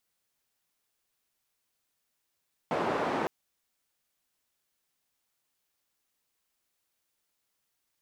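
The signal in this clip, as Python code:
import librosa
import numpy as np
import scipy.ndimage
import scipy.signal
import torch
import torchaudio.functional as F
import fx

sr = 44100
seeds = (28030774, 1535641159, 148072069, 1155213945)

y = fx.band_noise(sr, seeds[0], length_s=0.56, low_hz=210.0, high_hz=830.0, level_db=-30.0)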